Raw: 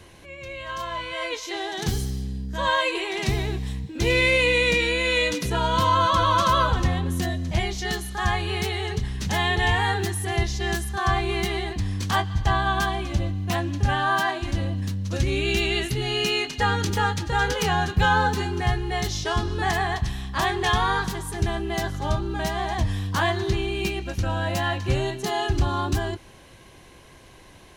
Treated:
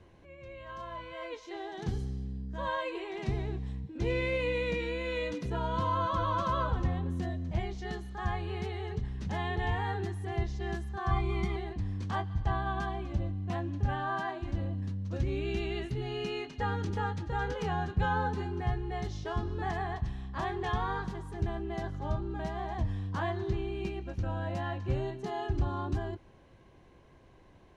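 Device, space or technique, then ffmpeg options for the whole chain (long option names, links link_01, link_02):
through cloth: -filter_complex "[0:a]asettb=1/sr,asplit=3[link_01][link_02][link_03];[link_01]atrim=end=11.114[link_04];[link_02]atrim=start=11.11:end=11.56,asetpts=PTS-STARTPTS,afade=type=in:duration=0.004:curve=qsin,afade=type=out:start_time=0.446:duration=0.004:curve=qsin,aecho=1:1:0.9:0.89,atrim=end_sample=19845[link_05];[link_03]atrim=start=11.556[link_06];[link_04][link_05]acrossfade=duration=0.004:curve1=hsin:curve2=qsin[link_07];[link_07][link_06]acrossfade=duration=0.004:curve1=qsin:curve2=hsin,lowpass=7800,highshelf=frequency=1900:gain=-14.5,volume=-7.5dB"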